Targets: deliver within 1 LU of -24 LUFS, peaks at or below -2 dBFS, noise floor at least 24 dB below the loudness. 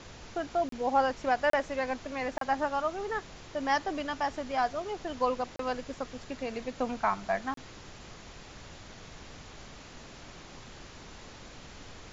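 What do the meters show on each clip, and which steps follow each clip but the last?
dropouts 5; longest dropout 33 ms; noise floor -49 dBFS; noise floor target -56 dBFS; loudness -32.0 LUFS; peak level -14.5 dBFS; loudness target -24.0 LUFS
-> interpolate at 0.69/1.50/2.38/5.56/7.54 s, 33 ms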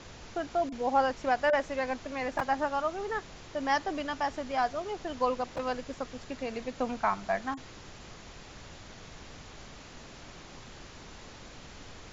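dropouts 0; noise floor -49 dBFS; noise floor target -56 dBFS
-> noise print and reduce 7 dB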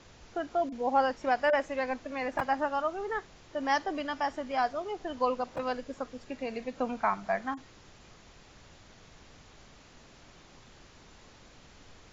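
noise floor -56 dBFS; loudness -32.0 LUFS; peak level -14.5 dBFS; loudness target -24.0 LUFS
-> trim +8 dB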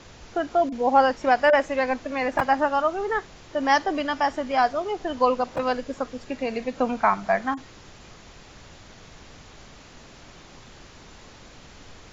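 loudness -24.0 LUFS; peak level -6.5 dBFS; noise floor -48 dBFS

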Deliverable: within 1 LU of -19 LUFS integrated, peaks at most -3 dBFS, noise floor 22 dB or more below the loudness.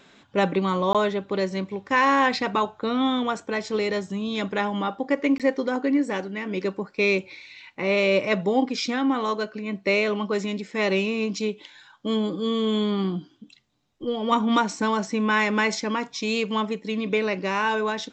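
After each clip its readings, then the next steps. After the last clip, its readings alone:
dropouts 2; longest dropout 17 ms; loudness -24.5 LUFS; peak level -7.0 dBFS; loudness target -19.0 LUFS
-> interpolate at 0.93/5.38 s, 17 ms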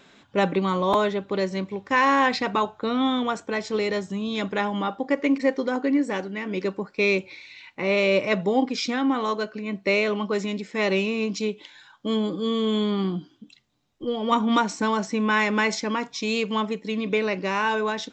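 dropouts 0; loudness -24.5 LUFS; peak level -7.0 dBFS; loudness target -19.0 LUFS
-> trim +5.5 dB; peak limiter -3 dBFS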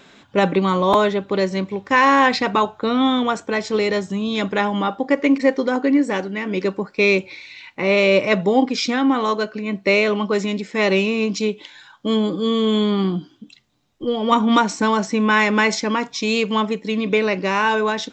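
loudness -19.0 LUFS; peak level -3.0 dBFS; noise floor -52 dBFS

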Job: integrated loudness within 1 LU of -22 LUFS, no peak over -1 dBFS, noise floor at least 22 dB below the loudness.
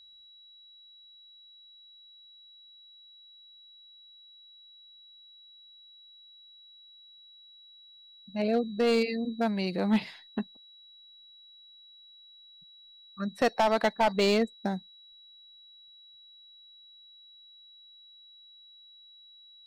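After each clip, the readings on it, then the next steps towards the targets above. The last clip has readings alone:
clipped samples 0.3%; clipping level -18.5 dBFS; steady tone 3.9 kHz; tone level -52 dBFS; loudness -28.5 LUFS; peak level -18.5 dBFS; loudness target -22.0 LUFS
-> clip repair -18.5 dBFS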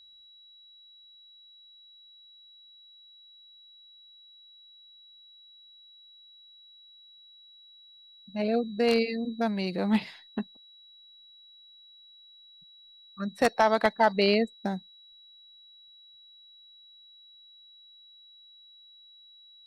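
clipped samples 0.0%; steady tone 3.9 kHz; tone level -52 dBFS
-> band-stop 3.9 kHz, Q 30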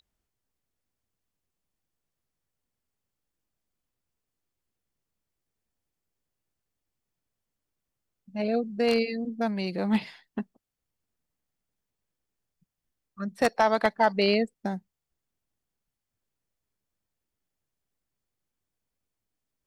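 steady tone not found; loudness -26.5 LUFS; peak level -9.5 dBFS; loudness target -22.0 LUFS
-> trim +4.5 dB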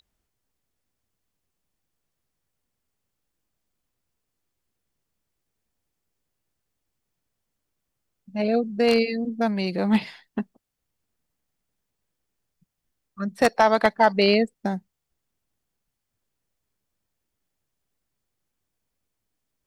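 loudness -22.0 LUFS; peak level -5.0 dBFS; noise floor -81 dBFS

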